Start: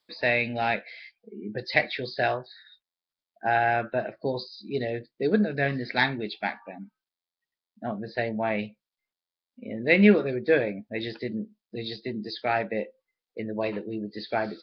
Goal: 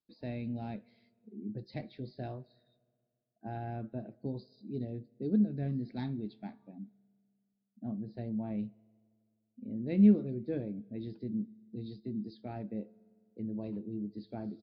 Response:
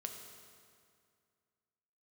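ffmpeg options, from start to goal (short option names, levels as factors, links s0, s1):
-filter_complex "[0:a]firequalizer=gain_entry='entry(250,0);entry(460,-14);entry(1800,-29);entry(3900,-20)':delay=0.05:min_phase=1,asplit=2[s0][s1];[1:a]atrim=start_sample=2205[s2];[s1][s2]afir=irnorm=-1:irlink=0,volume=0.15[s3];[s0][s3]amix=inputs=2:normalize=0,volume=0.668"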